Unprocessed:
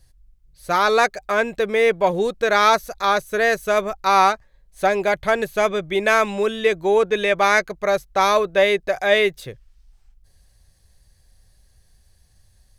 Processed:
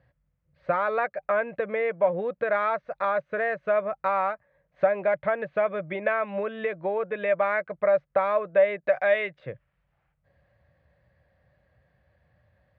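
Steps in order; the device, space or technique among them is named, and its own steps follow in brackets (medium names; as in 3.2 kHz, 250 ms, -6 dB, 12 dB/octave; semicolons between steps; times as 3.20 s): 8.87–9.39 s: treble shelf 2.2 kHz +11 dB; bass amplifier (compression 3:1, threshold -28 dBFS, peak gain reduction 14 dB; cabinet simulation 88–2200 Hz, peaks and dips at 96 Hz -8 dB, 230 Hz -5 dB, 390 Hz -9 dB, 570 Hz +9 dB, 830 Hz -3 dB); trim +2 dB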